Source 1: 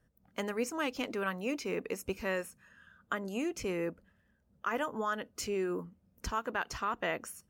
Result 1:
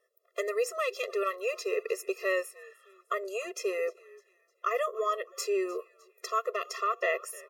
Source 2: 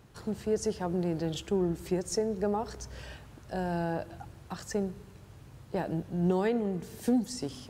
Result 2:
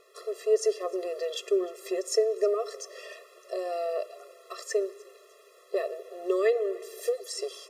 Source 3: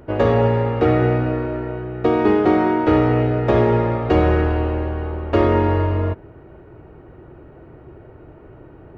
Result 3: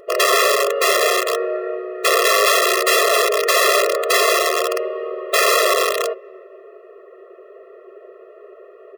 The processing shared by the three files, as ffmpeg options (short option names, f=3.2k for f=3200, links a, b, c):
-filter_complex "[0:a]asplit=4[a][b][c][d];[b]adelay=304,afreqshift=-88,volume=-21.5dB[e];[c]adelay=608,afreqshift=-176,volume=-28.6dB[f];[d]adelay=912,afreqshift=-264,volume=-35.8dB[g];[a][e][f][g]amix=inputs=4:normalize=0,aeval=exprs='(mod(4.22*val(0)+1,2)-1)/4.22':c=same,afftfilt=real='re*eq(mod(floor(b*sr/1024/350),2),1)':imag='im*eq(mod(floor(b*sr/1024/350),2),1)':win_size=1024:overlap=0.75,volume=6.5dB"